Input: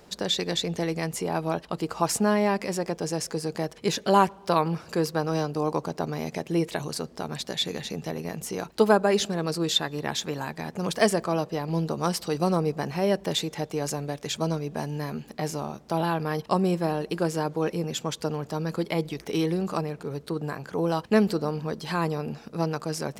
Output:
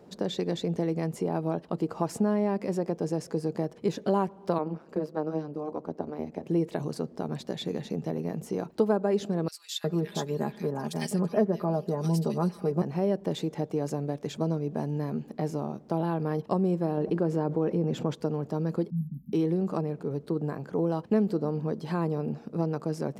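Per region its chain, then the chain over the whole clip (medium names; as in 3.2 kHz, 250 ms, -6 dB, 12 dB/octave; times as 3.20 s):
4.58–6.43 s: high-pass 180 Hz 24 dB/octave + treble shelf 3.4 kHz -9 dB + AM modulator 150 Hz, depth 75%
9.48–12.82 s: treble shelf 7 kHz +7.5 dB + comb 4.9 ms, depth 59% + bands offset in time highs, lows 360 ms, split 1.9 kHz
16.97–18.15 s: treble shelf 4.1 kHz -11 dB + level flattener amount 50%
18.90–19.33 s: brick-wall FIR band-stop 260–11000 Hz + phase dispersion highs, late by 61 ms, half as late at 1.1 kHz
whole clip: Bessel high-pass 170 Hz, order 2; tilt shelf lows +9.5 dB, about 880 Hz; compression 2:1, threshold -21 dBFS; trim -3.5 dB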